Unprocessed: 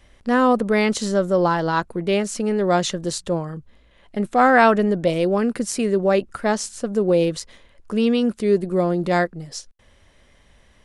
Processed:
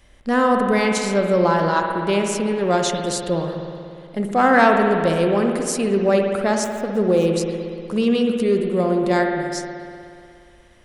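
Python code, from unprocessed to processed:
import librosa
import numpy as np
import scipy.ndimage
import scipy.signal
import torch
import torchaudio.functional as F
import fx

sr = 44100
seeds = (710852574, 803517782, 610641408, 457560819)

p1 = fx.median_filter(x, sr, points=9, at=(6.64, 7.26))
p2 = fx.high_shelf(p1, sr, hz=7500.0, db=5.5)
p3 = np.clip(p2, -10.0 ** (-11.5 / 20.0), 10.0 ** (-11.5 / 20.0))
p4 = p2 + F.gain(torch.from_numpy(p3), -8.0).numpy()
p5 = fx.rev_spring(p4, sr, rt60_s=2.4, pass_ms=(60,), chirp_ms=70, drr_db=2.5)
y = F.gain(torch.from_numpy(p5), -3.5).numpy()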